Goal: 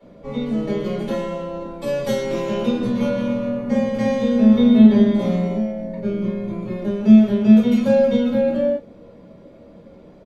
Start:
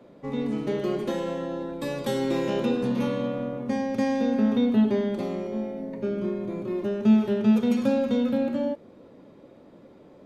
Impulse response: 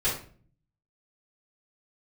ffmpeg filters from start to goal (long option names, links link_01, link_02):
-filter_complex "[0:a]asplit=3[link_01][link_02][link_03];[link_01]afade=type=out:start_time=3.15:duration=0.02[link_04];[link_02]aecho=1:1:50|112.5|190.6|288.3|410.4:0.631|0.398|0.251|0.158|0.1,afade=type=in:start_time=3.15:duration=0.02,afade=type=out:start_time=5.56:duration=0.02[link_05];[link_03]afade=type=in:start_time=5.56:duration=0.02[link_06];[link_04][link_05][link_06]amix=inputs=3:normalize=0[link_07];[1:a]atrim=start_sample=2205,atrim=end_sample=3969,asetrate=57330,aresample=44100[link_08];[link_07][link_08]afir=irnorm=-1:irlink=0,volume=-3dB"